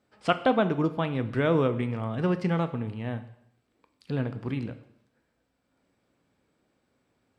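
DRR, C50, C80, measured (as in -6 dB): 10.0 dB, 14.0 dB, 16.0 dB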